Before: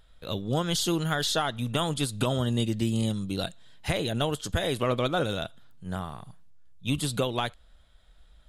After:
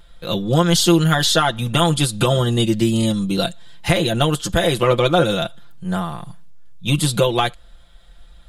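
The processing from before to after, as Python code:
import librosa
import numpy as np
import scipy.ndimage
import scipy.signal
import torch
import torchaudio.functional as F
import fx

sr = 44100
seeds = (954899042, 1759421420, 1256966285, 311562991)

y = x + 0.78 * np.pad(x, (int(5.8 * sr / 1000.0), 0))[:len(x)]
y = y * 10.0 ** (8.5 / 20.0)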